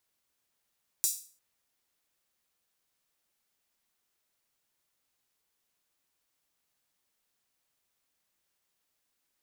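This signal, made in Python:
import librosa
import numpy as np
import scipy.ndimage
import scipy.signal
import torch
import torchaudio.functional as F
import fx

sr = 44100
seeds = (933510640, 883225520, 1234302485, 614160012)

y = fx.drum_hat_open(sr, length_s=0.35, from_hz=6600.0, decay_s=0.41)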